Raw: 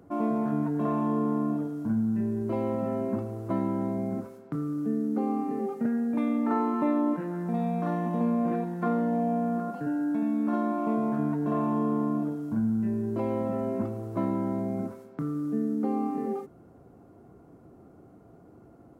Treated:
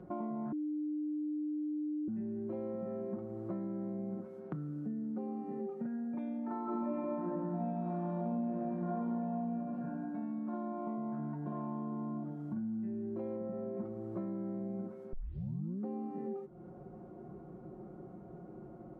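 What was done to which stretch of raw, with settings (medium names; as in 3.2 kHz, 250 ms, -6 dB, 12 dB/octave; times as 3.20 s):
0.52–2.08 s: bleep 301 Hz -18 dBFS
6.63–9.52 s: reverb throw, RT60 2.3 s, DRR -11.5 dB
13.36–13.77 s: distance through air 420 m
15.13 s: tape start 0.72 s
whole clip: low-pass 1 kHz 6 dB/octave; comb 5.5 ms, depth 89%; compression 4:1, threshold -41 dBFS; trim +1.5 dB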